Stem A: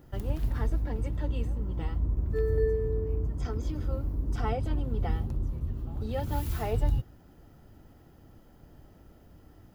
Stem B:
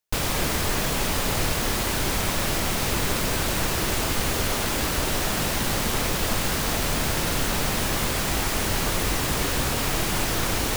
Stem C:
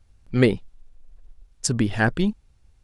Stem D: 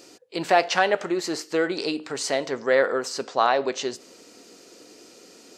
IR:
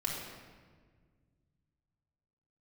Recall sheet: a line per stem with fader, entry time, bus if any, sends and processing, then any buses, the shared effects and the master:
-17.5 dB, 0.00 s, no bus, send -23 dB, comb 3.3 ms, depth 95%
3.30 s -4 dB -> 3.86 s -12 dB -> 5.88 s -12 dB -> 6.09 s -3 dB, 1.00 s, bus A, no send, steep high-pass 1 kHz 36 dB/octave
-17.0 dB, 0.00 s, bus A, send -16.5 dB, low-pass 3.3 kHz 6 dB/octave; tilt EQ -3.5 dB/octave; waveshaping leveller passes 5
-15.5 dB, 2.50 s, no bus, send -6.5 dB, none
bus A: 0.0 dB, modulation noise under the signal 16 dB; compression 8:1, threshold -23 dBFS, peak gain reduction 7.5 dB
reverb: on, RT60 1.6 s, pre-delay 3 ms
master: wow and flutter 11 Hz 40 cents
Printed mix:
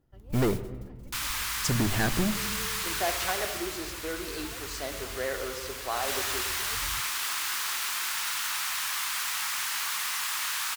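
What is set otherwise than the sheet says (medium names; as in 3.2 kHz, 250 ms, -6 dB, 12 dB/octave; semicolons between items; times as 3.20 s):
stem A: missing comb 3.3 ms, depth 95%; stem C: missing tilt EQ -3.5 dB/octave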